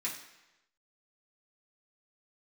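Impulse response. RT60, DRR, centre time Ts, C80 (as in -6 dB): 1.0 s, -7.5 dB, 29 ms, 9.5 dB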